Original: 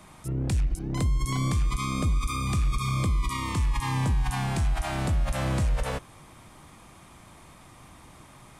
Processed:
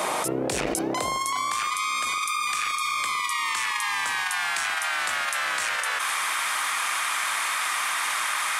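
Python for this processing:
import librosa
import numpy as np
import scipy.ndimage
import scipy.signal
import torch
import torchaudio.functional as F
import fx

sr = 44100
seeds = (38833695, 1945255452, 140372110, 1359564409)

y = fx.octave_divider(x, sr, octaves=2, level_db=-6.0)
y = fx.filter_sweep_highpass(y, sr, from_hz=500.0, to_hz=1500.0, start_s=0.76, end_s=1.84, q=1.8)
y = fx.env_flatten(y, sr, amount_pct=100)
y = y * 10.0 ** (2.0 / 20.0)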